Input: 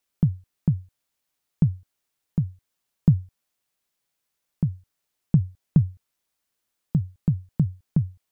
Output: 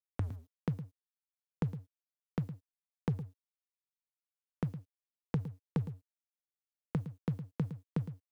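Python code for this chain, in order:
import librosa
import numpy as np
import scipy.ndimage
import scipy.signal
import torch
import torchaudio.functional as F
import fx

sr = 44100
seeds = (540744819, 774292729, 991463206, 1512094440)

p1 = fx.tape_start_head(x, sr, length_s=0.35)
p2 = fx.highpass(p1, sr, hz=840.0, slope=6)
p3 = fx.leveller(p2, sr, passes=2)
p4 = np.sign(p3) * np.maximum(np.abs(p3) - 10.0 ** (-52.5 / 20.0), 0.0)
p5 = p4 + fx.echo_single(p4, sr, ms=111, db=-11.5, dry=0)
p6 = fx.band_squash(p5, sr, depth_pct=70)
y = F.gain(torch.from_numpy(p6), -1.0).numpy()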